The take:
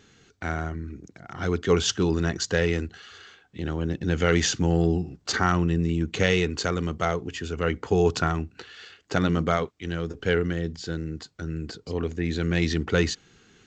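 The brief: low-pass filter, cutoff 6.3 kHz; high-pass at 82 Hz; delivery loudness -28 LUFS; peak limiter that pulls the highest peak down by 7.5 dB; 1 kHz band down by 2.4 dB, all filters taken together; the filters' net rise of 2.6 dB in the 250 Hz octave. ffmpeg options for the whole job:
-af "highpass=82,lowpass=6300,equalizer=f=250:t=o:g=4.5,equalizer=f=1000:t=o:g=-4,volume=0.944,alimiter=limit=0.178:level=0:latency=1"

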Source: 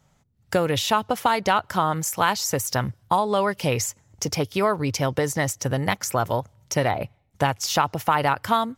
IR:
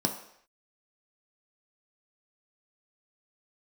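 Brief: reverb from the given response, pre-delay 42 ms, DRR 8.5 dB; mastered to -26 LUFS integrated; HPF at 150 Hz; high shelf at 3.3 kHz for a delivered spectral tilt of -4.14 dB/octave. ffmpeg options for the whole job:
-filter_complex "[0:a]highpass=150,highshelf=f=3300:g=4,asplit=2[s0][s1];[1:a]atrim=start_sample=2205,adelay=42[s2];[s1][s2]afir=irnorm=-1:irlink=0,volume=0.158[s3];[s0][s3]amix=inputs=2:normalize=0,volume=0.631"

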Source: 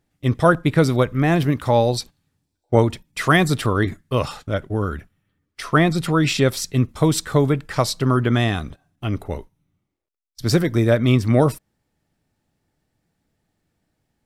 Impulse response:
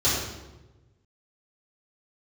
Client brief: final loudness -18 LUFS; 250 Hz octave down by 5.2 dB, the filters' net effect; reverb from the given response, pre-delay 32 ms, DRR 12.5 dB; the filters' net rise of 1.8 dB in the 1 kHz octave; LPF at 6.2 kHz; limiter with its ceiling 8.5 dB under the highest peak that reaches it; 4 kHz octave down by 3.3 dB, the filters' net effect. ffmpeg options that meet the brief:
-filter_complex "[0:a]lowpass=6200,equalizer=f=250:t=o:g=-8,equalizer=f=1000:t=o:g=3,equalizer=f=4000:t=o:g=-3.5,alimiter=limit=0.316:level=0:latency=1,asplit=2[s0][s1];[1:a]atrim=start_sample=2205,adelay=32[s2];[s1][s2]afir=irnorm=-1:irlink=0,volume=0.0422[s3];[s0][s3]amix=inputs=2:normalize=0,volume=1.68"

